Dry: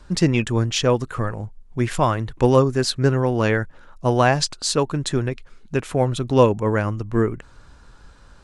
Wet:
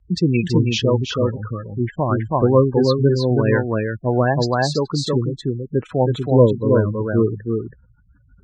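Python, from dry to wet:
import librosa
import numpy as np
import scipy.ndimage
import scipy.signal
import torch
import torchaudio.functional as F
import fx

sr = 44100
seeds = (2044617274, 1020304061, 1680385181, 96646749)

y = fx.spec_gate(x, sr, threshold_db=-15, keep='strong')
y = scipy.signal.sosfilt(scipy.signal.butter(2, 73.0, 'highpass', fs=sr, output='sos'), y)
y = y + 10.0 ** (-3.0 / 20.0) * np.pad(y, (int(324 * sr / 1000.0), 0))[:len(y)]
y = fx.rotary_switch(y, sr, hz=5.0, then_hz=0.75, switch_at_s=4.25)
y = scipy.signal.sosfilt(scipy.signal.butter(2, 4700.0, 'lowpass', fs=sr, output='sos'), y)
y = y * 10.0 ** (3.0 / 20.0)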